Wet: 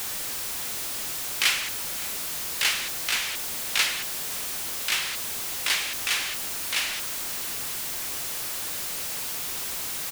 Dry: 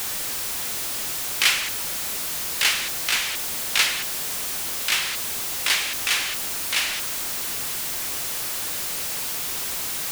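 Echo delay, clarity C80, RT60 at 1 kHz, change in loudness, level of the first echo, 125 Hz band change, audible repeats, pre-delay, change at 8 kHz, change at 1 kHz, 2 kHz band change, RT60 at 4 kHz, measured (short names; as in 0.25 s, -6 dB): 0.564 s, none, none, -3.5 dB, -21.0 dB, -3.5 dB, 1, none, -3.5 dB, -3.5 dB, -3.5 dB, none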